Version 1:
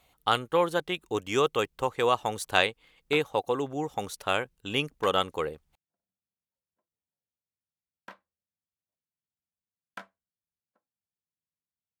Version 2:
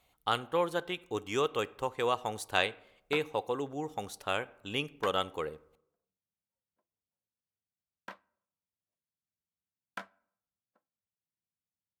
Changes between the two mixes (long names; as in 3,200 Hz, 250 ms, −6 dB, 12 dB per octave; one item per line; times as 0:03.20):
speech −7.5 dB
reverb: on, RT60 0.75 s